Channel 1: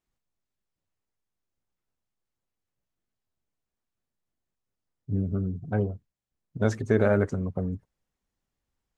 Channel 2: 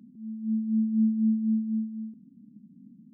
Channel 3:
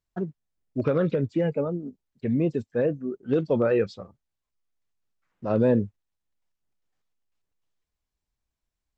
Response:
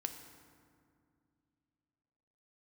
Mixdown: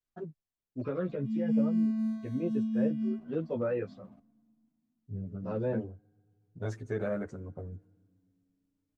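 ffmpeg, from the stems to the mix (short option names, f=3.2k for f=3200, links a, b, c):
-filter_complex "[0:a]volume=-9.5dB,asplit=2[a][b];[b]volume=-17dB[c];[1:a]lowshelf=f=150:g=12,acompressor=threshold=-29dB:ratio=2.5,aeval=exprs='sgn(val(0))*max(abs(val(0))-0.00251,0)':c=same,adelay=1050,volume=-1.5dB,asplit=2[d][e];[e]volume=-3.5dB[f];[2:a]acrossover=split=2700[g][h];[h]acompressor=threshold=-55dB:ratio=4:attack=1:release=60[i];[g][i]amix=inputs=2:normalize=0,volume=-7dB[j];[3:a]atrim=start_sample=2205[k];[c][f]amix=inputs=2:normalize=0[l];[l][k]afir=irnorm=-1:irlink=0[m];[a][d][j][m]amix=inputs=4:normalize=0,asplit=2[n][o];[o]adelay=10.8,afreqshift=0.67[p];[n][p]amix=inputs=2:normalize=1"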